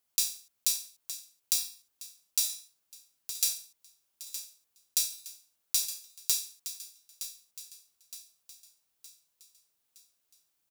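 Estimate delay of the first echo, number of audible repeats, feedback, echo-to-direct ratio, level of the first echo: 0.916 s, 4, 47%, -10.5 dB, -11.5 dB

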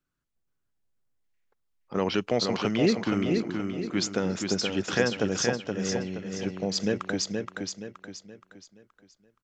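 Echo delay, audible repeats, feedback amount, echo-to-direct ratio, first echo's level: 0.473 s, 4, 39%, -4.0 dB, -4.5 dB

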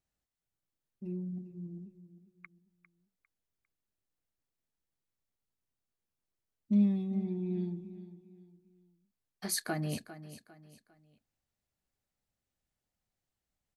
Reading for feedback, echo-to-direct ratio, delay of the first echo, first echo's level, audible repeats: 36%, -13.5 dB, 0.401 s, -14.0 dB, 3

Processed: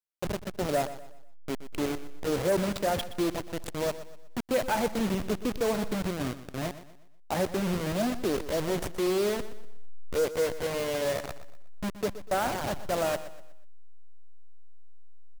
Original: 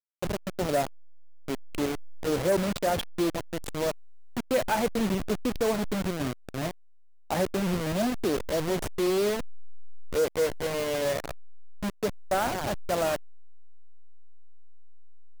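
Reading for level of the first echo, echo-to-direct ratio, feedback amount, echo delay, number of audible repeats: -14.0 dB, -13.5 dB, 38%, 0.122 s, 3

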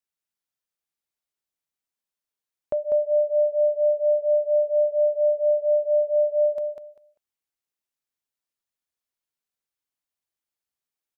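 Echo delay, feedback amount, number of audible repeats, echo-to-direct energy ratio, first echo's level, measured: 0.197 s, 19%, 3, -5.5 dB, -5.5 dB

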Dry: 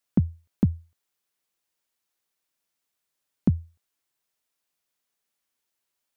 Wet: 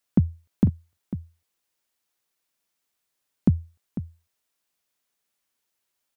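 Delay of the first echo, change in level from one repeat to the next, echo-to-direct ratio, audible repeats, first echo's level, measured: 0.498 s, no steady repeat, -12.5 dB, 1, -12.5 dB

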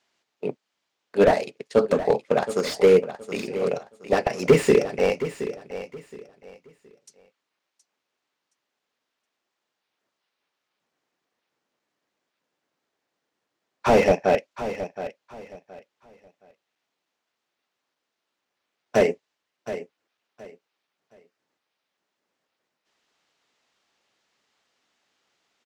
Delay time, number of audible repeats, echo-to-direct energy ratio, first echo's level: 0.72 s, 2, -12.0 dB, -12.5 dB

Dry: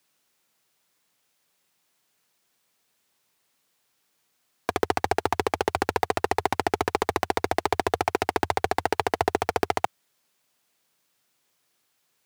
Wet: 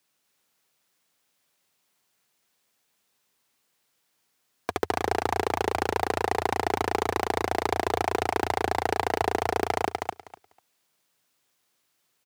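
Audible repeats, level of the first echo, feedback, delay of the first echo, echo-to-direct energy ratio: 3, -3.0 dB, 16%, 0.247 s, -3.0 dB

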